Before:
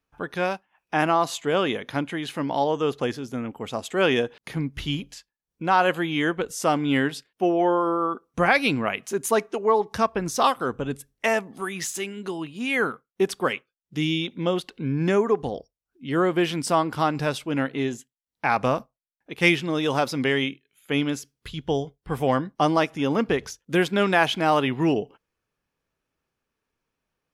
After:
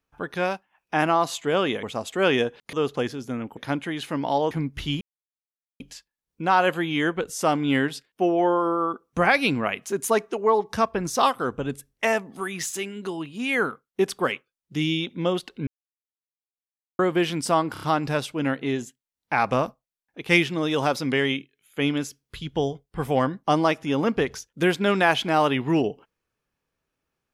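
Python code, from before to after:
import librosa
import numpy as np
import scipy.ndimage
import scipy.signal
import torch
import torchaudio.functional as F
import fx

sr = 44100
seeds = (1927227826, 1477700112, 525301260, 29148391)

y = fx.edit(x, sr, fx.swap(start_s=1.83, length_s=0.94, other_s=3.61, other_length_s=0.9),
    fx.insert_silence(at_s=5.01, length_s=0.79),
    fx.silence(start_s=14.88, length_s=1.32),
    fx.stutter(start_s=16.94, slice_s=0.03, count=4), tone=tone)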